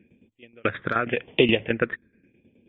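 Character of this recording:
phaser sweep stages 6, 0.88 Hz, lowest notch 750–1,500 Hz
tremolo saw down 9.4 Hz, depth 75%
MP3

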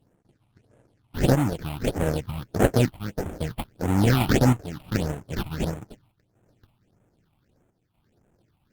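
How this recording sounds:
chopped level 0.63 Hz, depth 60%, duty 85%
aliases and images of a low sample rate 1,100 Hz, jitter 20%
phaser sweep stages 6, 1.6 Hz, lowest notch 430–4,700 Hz
Opus

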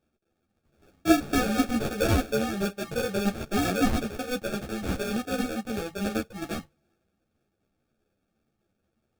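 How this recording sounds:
aliases and images of a low sample rate 1,000 Hz, jitter 0%
a shimmering, thickened sound

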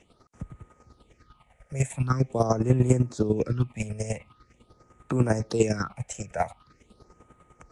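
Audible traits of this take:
chopped level 10 Hz, depth 65%, duty 25%
phaser sweep stages 6, 0.44 Hz, lowest notch 280–4,800 Hz
Nellymoser

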